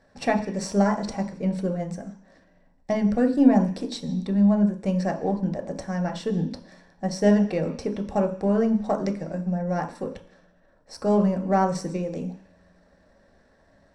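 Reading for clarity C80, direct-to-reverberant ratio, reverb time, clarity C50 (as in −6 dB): 14.5 dB, 3.0 dB, 0.50 s, 11.5 dB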